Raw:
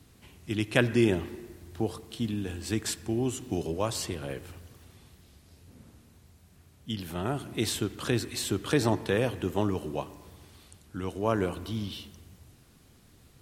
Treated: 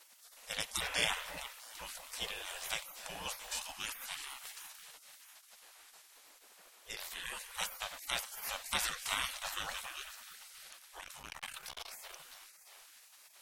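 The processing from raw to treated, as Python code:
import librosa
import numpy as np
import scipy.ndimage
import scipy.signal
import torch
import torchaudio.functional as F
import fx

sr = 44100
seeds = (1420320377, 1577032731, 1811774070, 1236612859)

y = fx.echo_alternate(x, sr, ms=328, hz=1200.0, feedback_pct=53, wet_db=-9.5)
y = fx.spec_gate(y, sr, threshold_db=-25, keep='weak')
y = fx.transformer_sat(y, sr, knee_hz=3000.0, at=(11.0, 12.2))
y = F.gain(torch.from_numpy(y), 7.0).numpy()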